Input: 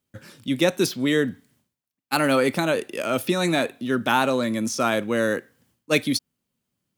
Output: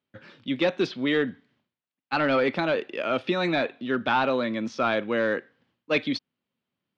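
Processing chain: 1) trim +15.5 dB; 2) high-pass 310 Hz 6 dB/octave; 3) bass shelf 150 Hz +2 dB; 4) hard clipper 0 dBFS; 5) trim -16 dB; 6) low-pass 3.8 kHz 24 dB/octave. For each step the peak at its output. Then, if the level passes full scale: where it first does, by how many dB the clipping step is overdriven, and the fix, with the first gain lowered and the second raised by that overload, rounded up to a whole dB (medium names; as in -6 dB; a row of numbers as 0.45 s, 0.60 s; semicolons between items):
+10.0 dBFS, +9.5 dBFS, +9.5 dBFS, 0.0 dBFS, -16.0 dBFS, -14.0 dBFS; step 1, 9.5 dB; step 1 +5.5 dB, step 5 -6 dB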